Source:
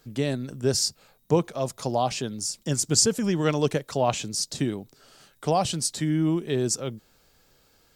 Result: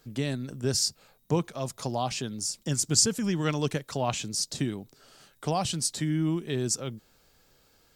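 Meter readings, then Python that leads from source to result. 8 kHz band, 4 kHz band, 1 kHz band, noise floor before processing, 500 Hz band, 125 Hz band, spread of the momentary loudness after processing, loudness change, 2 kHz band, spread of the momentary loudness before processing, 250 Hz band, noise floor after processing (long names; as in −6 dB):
−1.5 dB, −1.5 dB, −5.0 dB, −62 dBFS, −6.5 dB, −2.0 dB, 8 LU, −3.0 dB, −2.0 dB, 8 LU, −3.5 dB, −64 dBFS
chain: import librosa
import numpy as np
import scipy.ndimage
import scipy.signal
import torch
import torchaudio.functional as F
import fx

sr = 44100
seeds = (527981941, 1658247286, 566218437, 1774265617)

y = fx.dynamic_eq(x, sr, hz=530.0, q=0.97, threshold_db=-35.0, ratio=4.0, max_db=-6)
y = y * librosa.db_to_amplitude(-1.5)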